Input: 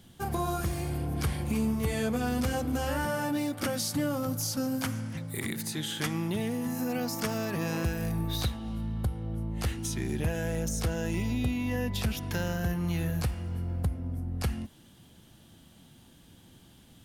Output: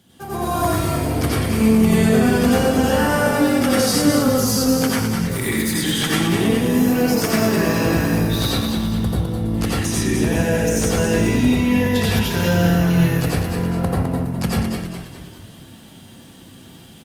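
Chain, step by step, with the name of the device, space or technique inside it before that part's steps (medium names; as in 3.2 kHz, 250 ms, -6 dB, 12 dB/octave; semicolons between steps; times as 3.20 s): 13.43–14.20 s: peaking EQ 920 Hz +8 dB 2.5 oct; frequency-shifting echo 207 ms, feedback 50%, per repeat -44 Hz, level -6 dB; frequency-shifting echo 271 ms, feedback 62%, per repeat -42 Hz, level -21 dB; far-field microphone of a smart speaker (reverberation RT60 0.50 s, pre-delay 82 ms, DRR -5 dB; high-pass 110 Hz 12 dB/octave; level rider gain up to 7 dB; Opus 48 kbps 48 kHz)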